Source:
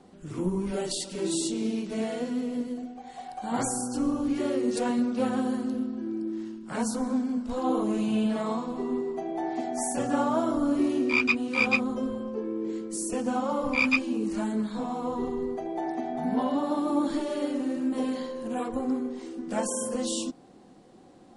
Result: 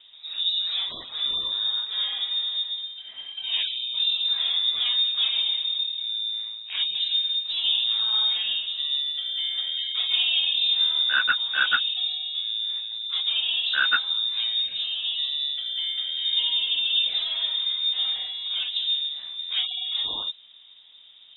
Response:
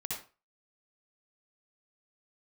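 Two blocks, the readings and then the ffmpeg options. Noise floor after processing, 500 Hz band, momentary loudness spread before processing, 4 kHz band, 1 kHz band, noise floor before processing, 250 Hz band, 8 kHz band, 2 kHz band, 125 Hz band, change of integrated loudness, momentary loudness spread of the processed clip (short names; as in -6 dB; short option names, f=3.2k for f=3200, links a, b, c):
-49 dBFS, under -20 dB, 9 LU, +23.5 dB, -6.0 dB, -52 dBFS, under -30 dB, under -40 dB, +3.5 dB, under -20 dB, +5.5 dB, 7 LU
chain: -af "acontrast=82,lowpass=f=3.3k:t=q:w=0.5098,lowpass=f=3.3k:t=q:w=0.6013,lowpass=f=3.3k:t=q:w=0.9,lowpass=f=3.3k:t=q:w=2.563,afreqshift=-3900,volume=-4.5dB"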